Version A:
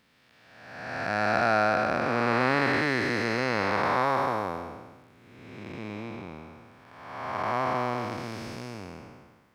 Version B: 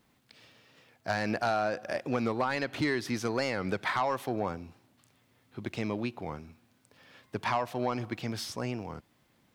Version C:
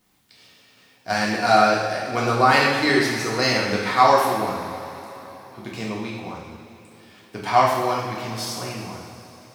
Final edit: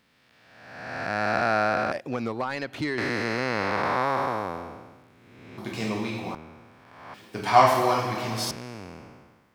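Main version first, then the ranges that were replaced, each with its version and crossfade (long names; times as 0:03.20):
A
0:01.92–0:02.98: punch in from B
0:05.58–0:06.35: punch in from C
0:07.14–0:08.51: punch in from C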